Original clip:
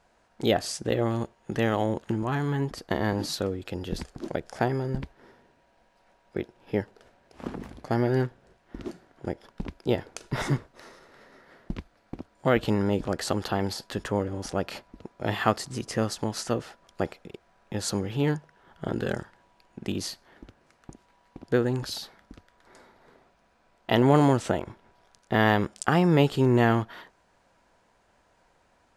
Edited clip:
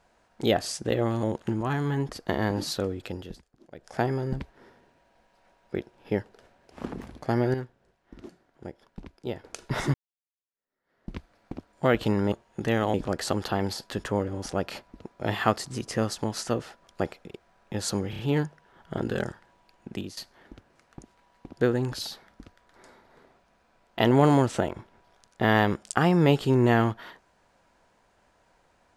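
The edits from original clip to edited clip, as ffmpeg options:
ffmpeg -i in.wav -filter_complex "[0:a]asplit=13[link_01][link_02][link_03][link_04][link_05][link_06][link_07][link_08][link_09][link_10][link_11][link_12][link_13];[link_01]atrim=end=1.232[link_14];[link_02]atrim=start=1.848:end=4.02,asetpts=PTS-STARTPTS,afade=type=out:start_time=1.842:duration=0.33:silence=0.0841395[link_15];[link_03]atrim=start=4.02:end=4.33,asetpts=PTS-STARTPTS,volume=-21.5dB[link_16];[link_04]atrim=start=4.33:end=8.162,asetpts=PTS-STARTPTS,afade=type=in:duration=0.33:silence=0.0841395[link_17];[link_05]atrim=start=8.158:end=10.062,asetpts=PTS-STARTPTS,volume=-8dB[link_18];[link_06]atrim=start=10.058:end=10.56,asetpts=PTS-STARTPTS,afade=type=out:start_time=0.498:duration=0.004:curve=hsin[link_19];[link_07]atrim=start=10.56:end=12.942,asetpts=PTS-STARTPTS,afade=type=in:duration=1.22:curve=exp[link_20];[link_08]atrim=start=1.228:end=1.852[link_21];[link_09]atrim=start=12.938:end=18.132[link_22];[link_10]atrim=start=18.098:end=18.132[link_23];[link_11]atrim=start=18.098:end=18.132[link_24];[link_12]atrim=start=18.098:end=20.08,asetpts=PTS-STARTPTS,afade=type=out:start_time=1.692:duration=0.29:silence=0.133352[link_25];[link_13]atrim=start=20.08,asetpts=PTS-STARTPTS,afade=type=in:duration=0.004:curve=hsin:silence=0.133352[link_26];[link_15][link_16][link_17]concat=n=3:v=0:a=1[link_27];[link_14][link_27]acrossfade=duration=0.004:curve1=hsin:curve2=hsin[link_28];[link_28][link_18]acrossfade=duration=0.004:curve1=hsin:curve2=hsin[link_29];[link_19][link_20]concat=n=2:v=0:a=1[link_30];[link_29][link_30]acrossfade=duration=0.004:curve1=hsin:curve2=hsin[link_31];[link_31][link_21]acrossfade=duration=0.004:curve1=hsin:curve2=hsin[link_32];[link_32][link_22]acrossfade=duration=0.004:curve1=hsin:curve2=hsin[link_33];[link_33][link_23]acrossfade=duration=0.004:curve1=hsin:curve2=hsin[link_34];[link_34][link_24]acrossfade=duration=0.004:curve1=hsin:curve2=hsin[link_35];[link_25][link_26]concat=n=2:v=0:a=1[link_36];[link_35][link_36]acrossfade=duration=0.004:curve1=hsin:curve2=hsin" out.wav

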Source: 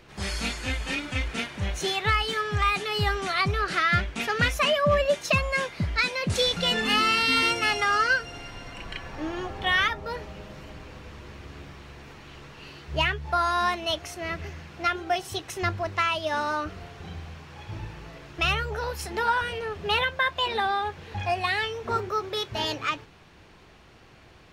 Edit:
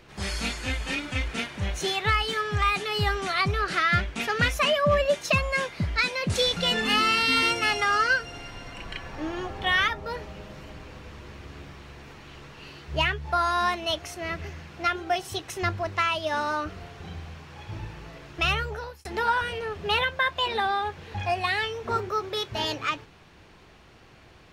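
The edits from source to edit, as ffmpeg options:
ffmpeg -i in.wav -filter_complex "[0:a]asplit=2[link_01][link_02];[link_01]atrim=end=19.05,asetpts=PTS-STARTPTS,afade=type=out:start_time=18.63:duration=0.42[link_03];[link_02]atrim=start=19.05,asetpts=PTS-STARTPTS,afade=type=in:duration=0.004:curve=hsin[link_04];[link_03][link_04]concat=n=2:v=0:a=1" out.wav

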